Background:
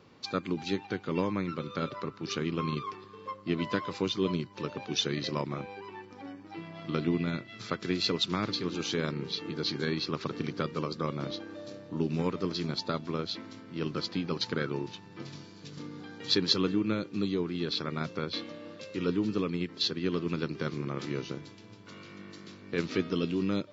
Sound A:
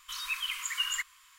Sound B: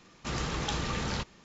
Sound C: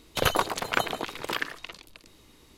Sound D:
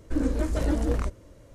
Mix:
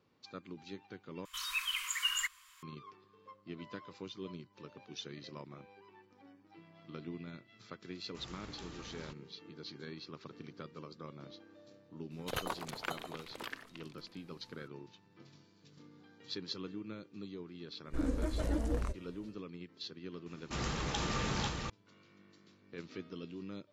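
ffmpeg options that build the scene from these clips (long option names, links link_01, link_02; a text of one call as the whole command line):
ffmpeg -i bed.wav -i cue0.wav -i cue1.wav -i cue2.wav -i cue3.wav -filter_complex "[2:a]asplit=2[link_01][link_02];[0:a]volume=-15.5dB[link_03];[link_02]aecho=1:1:493:0.708[link_04];[link_03]asplit=2[link_05][link_06];[link_05]atrim=end=1.254[link_07];[1:a]atrim=end=1.38,asetpts=PTS-STARTPTS,volume=-2dB[link_08];[link_06]atrim=start=2.626[link_09];[link_01]atrim=end=1.44,asetpts=PTS-STARTPTS,volume=-18dB,afade=type=in:duration=0.004:curve=hsin,afade=type=out:start_time=1.436:duration=0.004:curve=hsin,adelay=7900[link_10];[3:a]atrim=end=2.57,asetpts=PTS-STARTPTS,volume=-14dB,afade=type=in:duration=0.004:curve=hsin,afade=type=out:start_time=2.566:duration=0.004:curve=hsin,adelay=12110[link_11];[4:a]atrim=end=1.54,asetpts=PTS-STARTPTS,volume=-8.5dB,afade=type=in:duration=0.1,afade=type=out:start_time=1.44:duration=0.1,adelay=17830[link_12];[link_04]atrim=end=1.44,asetpts=PTS-STARTPTS,volume=-4dB,afade=type=in:duration=0.004:curve=hsin,afade=type=out:start_time=1.436:duration=0.004:curve=hsin,adelay=20260[link_13];[link_07][link_08]acrossfade=duration=0.004:curve1=hsin:curve2=hsin[link_14];[link_14][link_09]acrossfade=duration=0.004:curve1=hsin:curve2=hsin[link_15];[link_15][link_10][link_11][link_12][link_13]amix=inputs=5:normalize=0" out.wav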